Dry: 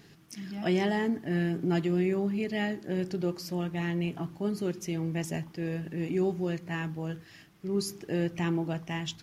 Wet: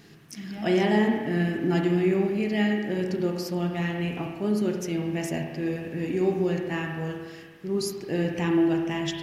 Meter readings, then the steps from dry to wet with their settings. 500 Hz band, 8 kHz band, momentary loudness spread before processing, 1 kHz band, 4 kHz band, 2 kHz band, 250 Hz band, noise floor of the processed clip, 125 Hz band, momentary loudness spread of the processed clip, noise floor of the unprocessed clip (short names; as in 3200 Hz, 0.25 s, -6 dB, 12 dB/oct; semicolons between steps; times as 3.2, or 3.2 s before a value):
+5.5 dB, +3.0 dB, 8 LU, +5.0 dB, +4.0 dB, +5.0 dB, +5.0 dB, -47 dBFS, +2.5 dB, 9 LU, -55 dBFS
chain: notches 60/120/180 Hz; spring tank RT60 1.4 s, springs 33/57 ms, chirp 60 ms, DRR 2 dB; gain +3 dB